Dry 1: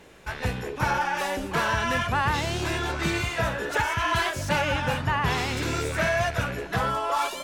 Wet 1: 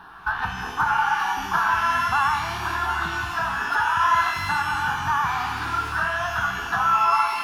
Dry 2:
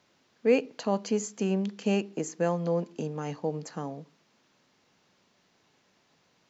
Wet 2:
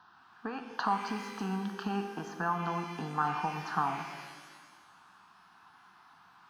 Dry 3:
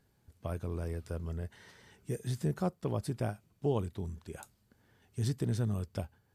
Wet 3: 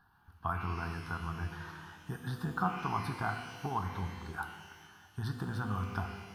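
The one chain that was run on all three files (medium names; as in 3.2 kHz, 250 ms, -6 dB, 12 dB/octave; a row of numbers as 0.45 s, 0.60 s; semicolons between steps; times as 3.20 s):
compression 6:1, threshold -31 dBFS; high-order bell 1.1 kHz +16 dB; static phaser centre 2.1 kHz, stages 6; pitch-shifted reverb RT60 1.5 s, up +12 st, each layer -8 dB, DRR 5.5 dB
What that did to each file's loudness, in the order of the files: +3.5 LU, -4.5 LU, -1.0 LU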